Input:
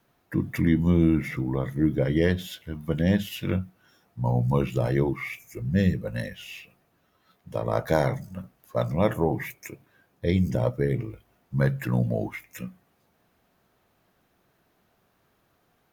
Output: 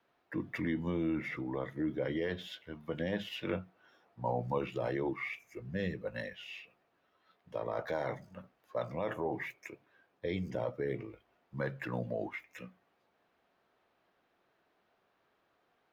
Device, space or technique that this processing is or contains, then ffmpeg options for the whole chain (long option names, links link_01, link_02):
DJ mixer with the lows and highs turned down: -filter_complex "[0:a]acrossover=split=290 4700:gain=0.224 1 0.126[link_01][link_02][link_03];[link_01][link_02][link_03]amix=inputs=3:normalize=0,alimiter=limit=-20.5dB:level=0:latency=1:release=20,asettb=1/sr,asplit=3[link_04][link_05][link_06];[link_04]atrim=end=3.124[link_07];[link_05]atrim=start=3.12:end=4.58,asetpts=PTS-STARTPTS,afade=type=in:duration=0.004:curve=qsin,afade=type=out:start_time=1.456:duration=0.004:curve=qsin,equalizer=frequency=630:width=0.51:gain=4[link_08];[link_06]atrim=start=4.576[link_09];[link_07][link_08]acrossfade=duration=0.004:curve1=hsin:curve2=qsin[link_10];[link_10][link_09]acrossfade=duration=0.004:curve1=qsin:curve2=hsin,volume=-4.5dB"